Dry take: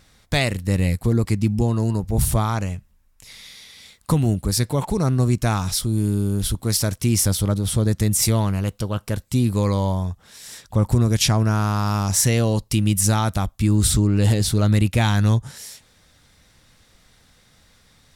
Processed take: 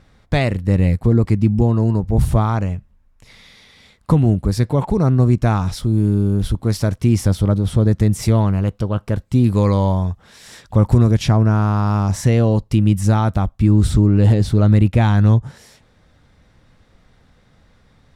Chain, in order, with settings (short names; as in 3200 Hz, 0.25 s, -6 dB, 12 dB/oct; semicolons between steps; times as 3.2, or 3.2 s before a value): LPF 1200 Hz 6 dB/oct, from 9.44 s 2400 Hz, from 11.11 s 1000 Hz; gain +5 dB